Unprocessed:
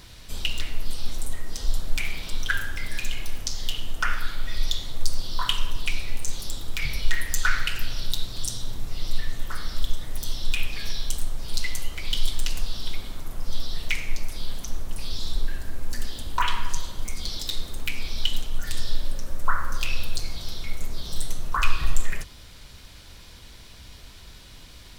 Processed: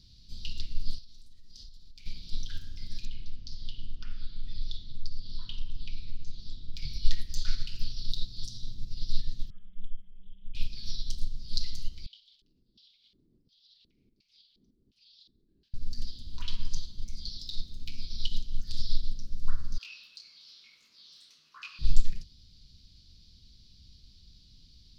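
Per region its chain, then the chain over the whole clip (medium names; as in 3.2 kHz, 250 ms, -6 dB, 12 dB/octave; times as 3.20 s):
0.98–2.06 s: compression 12:1, threshold -26 dBFS + bass shelf 460 Hz -7.5 dB
3.05–6.76 s: low-pass 3.5 kHz + compression 2.5:1, threshold -19 dBFS
9.50–10.55 s: brick-wall FIR low-pass 3.4 kHz + inharmonic resonator 190 Hz, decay 0.21 s, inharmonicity 0.03 + loudspeaker Doppler distortion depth 0.44 ms
12.06–15.74 s: peaking EQ 410 Hz +5 dB 0.22 oct + compression 4:1, threshold -26 dBFS + LFO band-pass square 1.4 Hz 340–2800 Hz
19.78–21.79 s: Chebyshev high-pass 650 Hz + high-order bell 1.7 kHz +12.5 dB + detune thickener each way 35 cents
whole clip: FFT filter 210 Hz 0 dB, 760 Hz -26 dB, 1.9 kHz -22 dB, 4.7 kHz +5 dB, 8.2 kHz -19 dB; upward expansion 1.5:1, over -28 dBFS; trim +1 dB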